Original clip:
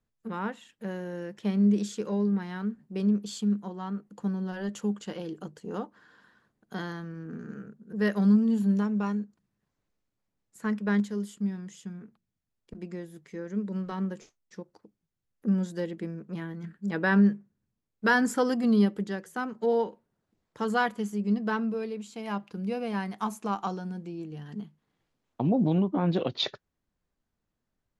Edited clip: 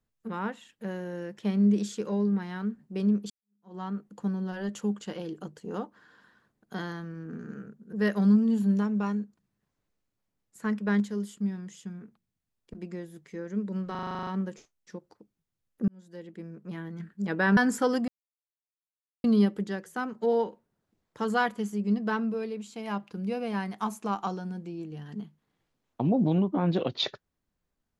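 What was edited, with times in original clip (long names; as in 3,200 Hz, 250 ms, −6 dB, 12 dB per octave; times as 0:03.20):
0:03.30–0:03.75: fade in exponential
0:13.91: stutter 0.04 s, 10 plays
0:15.52–0:16.63: fade in
0:17.21–0:18.13: remove
0:18.64: splice in silence 1.16 s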